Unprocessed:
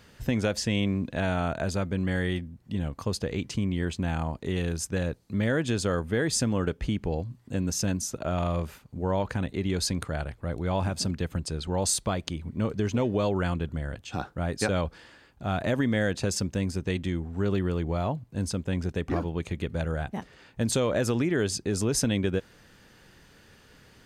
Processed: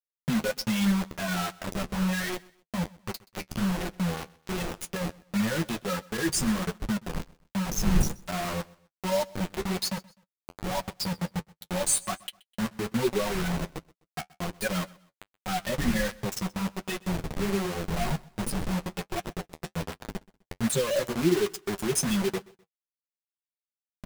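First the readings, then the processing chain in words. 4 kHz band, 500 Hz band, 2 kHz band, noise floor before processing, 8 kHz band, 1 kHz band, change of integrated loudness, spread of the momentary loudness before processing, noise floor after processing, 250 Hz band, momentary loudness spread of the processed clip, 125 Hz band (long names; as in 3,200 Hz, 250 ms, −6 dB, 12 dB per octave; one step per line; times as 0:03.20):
+0.5 dB, −2.5 dB, 0.0 dB, −57 dBFS, +0.5 dB, +0.5 dB, −1.0 dB, 7 LU, below −85 dBFS, −0.5 dB, 12 LU, −4.5 dB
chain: spectral dynamics exaggerated over time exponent 3
wind on the microphone 94 Hz −41 dBFS
parametric band 9,500 Hz +9 dB 0.29 octaves
comb filter 5.4 ms, depth 89%
dynamic equaliser 310 Hz, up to +4 dB, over −45 dBFS, Q 1.1
in parallel at −2 dB: downward compressor 8 to 1, threshold −35 dBFS, peak gain reduction 20 dB
on the sum: bit reduction 5 bits
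flanger 1.3 Hz, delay 7.9 ms, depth 5.5 ms, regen −35%
on a send: repeating echo 127 ms, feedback 35%, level −23 dB
on the sum: level +2.5 dB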